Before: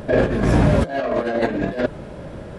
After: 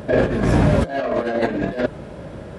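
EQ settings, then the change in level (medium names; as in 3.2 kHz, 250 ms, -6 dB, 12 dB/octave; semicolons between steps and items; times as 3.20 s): high-pass 43 Hz; 0.0 dB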